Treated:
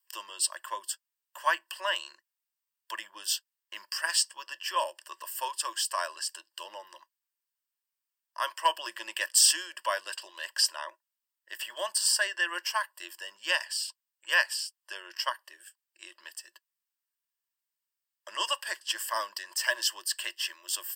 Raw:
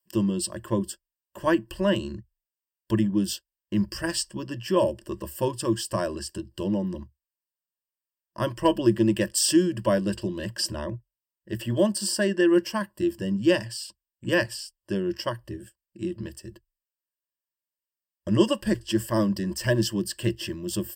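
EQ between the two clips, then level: inverse Chebyshev high-pass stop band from 150 Hz, stop band 80 dB; +3.0 dB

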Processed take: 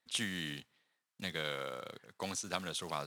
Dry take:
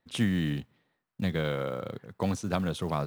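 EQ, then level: band-pass filter 8 kHz, Q 0.7; tilt EQ -2 dB/octave; +10.0 dB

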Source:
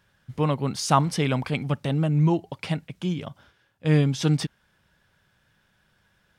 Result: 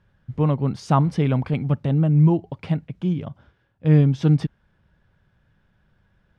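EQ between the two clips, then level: tilt EQ -2.5 dB/octave; treble shelf 6.3 kHz -10.5 dB; -1.5 dB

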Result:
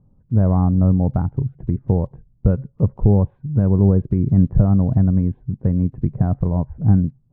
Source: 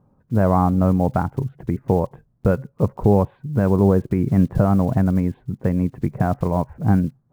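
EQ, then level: tilt EQ -4.5 dB/octave; -10.0 dB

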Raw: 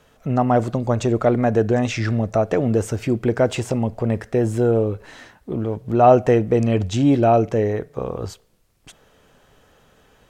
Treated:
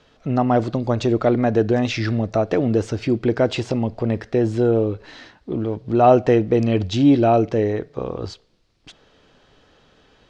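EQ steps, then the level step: resonant low-pass 4.5 kHz, resonance Q 2.1; peaking EQ 310 Hz +5 dB 0.58 oct; -1.5 dB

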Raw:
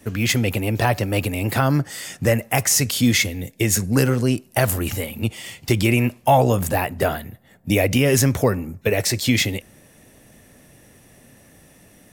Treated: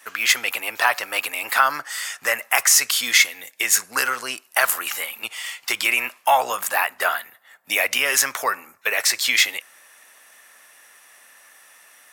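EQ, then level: resonant high-pass 1.2 kHz, resonance Q 1.9; +3.0 dB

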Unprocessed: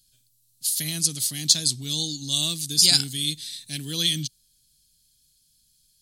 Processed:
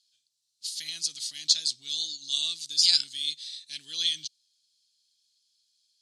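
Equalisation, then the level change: band-pass filter 4.7 kHz, Q 1; distance through air 68 m; 0.0 dB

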